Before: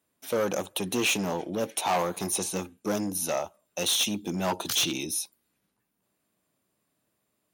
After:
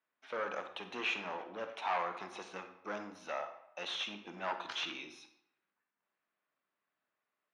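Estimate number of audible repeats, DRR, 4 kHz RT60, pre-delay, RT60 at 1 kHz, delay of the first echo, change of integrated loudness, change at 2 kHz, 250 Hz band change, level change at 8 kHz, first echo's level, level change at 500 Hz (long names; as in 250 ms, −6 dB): no echo audible, 7.5 dB, 0.55 s, 27 ms, 0.80 s, no echo audible, −11.5 dB, −6.0 dB, −18.5 dB, −27.5 dB, no echo audible, −12.0 dB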